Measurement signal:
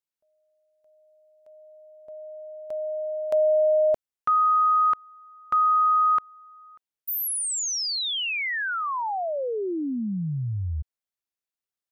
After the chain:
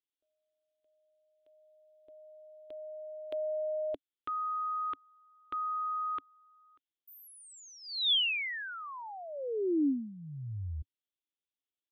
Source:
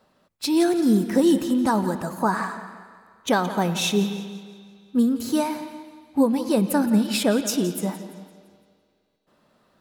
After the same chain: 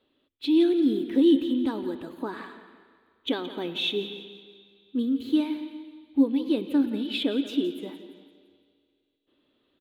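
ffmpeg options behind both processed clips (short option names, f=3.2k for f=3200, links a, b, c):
-filter_complex "[0:a]acrossover=split=8400[a][b];[b]acompressor=threshold=-37dB:ratio=4:attack=1:release=60[c];[a][c]amix=inputs=2:normalize=0,firequalizer=gain_entry='entry(100,0);entry(190,-11);entry(280,11);entry(660,-7);entry(1400,-5);entry(3400,12);entry(5300,-16);entry(8200,-15);entry(14000,-8)':delay=0.05:min_phase=1,volume=-9dB"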